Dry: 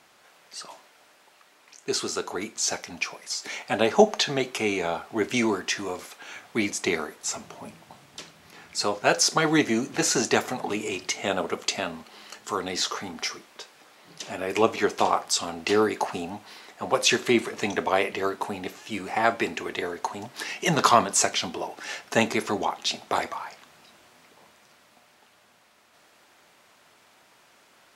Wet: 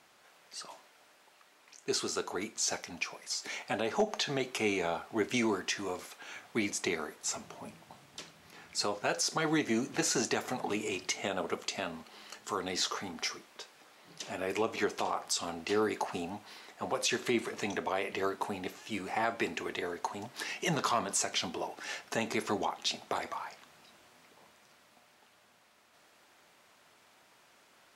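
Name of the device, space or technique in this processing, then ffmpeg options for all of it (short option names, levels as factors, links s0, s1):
clipper into limiter: -af "asoftclip=type=hard:threshold=0.422,alimiter=limit=0.178:level=0:latency=1:release=132,volume=0.562"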